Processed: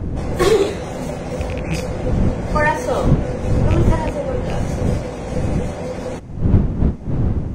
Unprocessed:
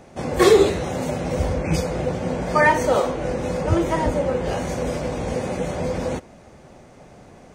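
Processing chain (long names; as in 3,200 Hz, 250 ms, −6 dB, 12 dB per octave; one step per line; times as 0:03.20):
loose part that buzzes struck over −19 dBFS, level −17 dBFS
wind on the microphone 150 Hz −19 dBFS
level −1 dB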